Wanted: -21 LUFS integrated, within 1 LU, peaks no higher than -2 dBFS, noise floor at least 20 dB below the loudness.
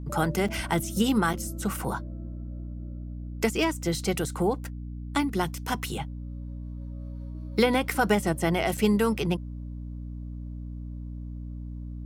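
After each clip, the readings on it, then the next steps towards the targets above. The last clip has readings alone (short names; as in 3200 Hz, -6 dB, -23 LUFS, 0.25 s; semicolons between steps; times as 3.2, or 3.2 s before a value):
dropouts 3; longest dropout 5.2 ms; hum 60 Hz; harmonics up to 300 Hz; hum level -34 dBFS; loudness -29.0 LUFS; peak -10.5 dBFS; loudness target -21.0 LUFS
-> interpolate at 0.48/1.33/8.77, 5.2 ms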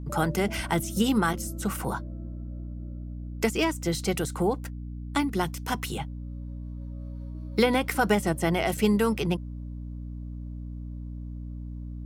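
dropouts 0; hum 60 Hz; harmonics up to 300 Hz; hum level -34 dBFS
-> notches 60/120/180/240/300 Hz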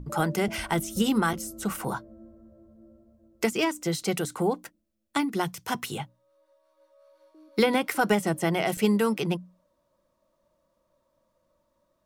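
hum none; loudness -27.5 LUFS; peak -11.0 dBFS; loudness target -21.0 LUFS
-> gain +6.5 dB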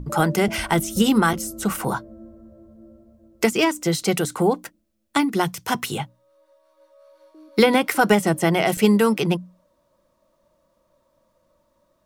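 loudness -21.0 LUFS; peak -4.5 dBFS; noise floor -67 dBFS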